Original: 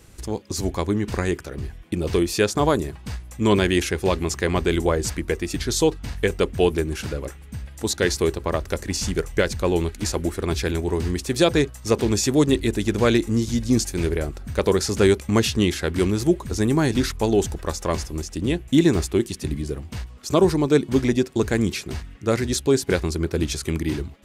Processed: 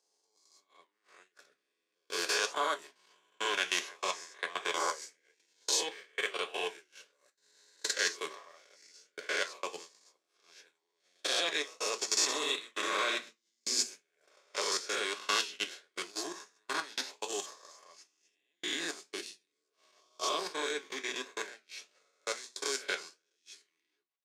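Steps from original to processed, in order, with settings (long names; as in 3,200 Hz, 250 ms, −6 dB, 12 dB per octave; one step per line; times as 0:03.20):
peak hold with a rise ahead of every peak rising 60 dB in 1.51 s
high-pass filter 220 Hz 24 dB per octave
0:12.22–0:14.36: flutter between parallel walls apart 11 metres, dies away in 0.66 s
output level in coarse steps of 18 dB
three-way crossover with the lows and the highs turned down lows −12 dB, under 590 Hz, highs −17 dB, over 6,800 Hz
noise gate −37 dBFS, range −30 dB
convolution reverb RT60 0.15 s, pre-delay 3 ms, DRR 6.5 dB
flanger 1.5 Hz, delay 9 ms, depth 5.4 ms, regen −71%
spectral tilt +3 dB per octave
level −6.5 dB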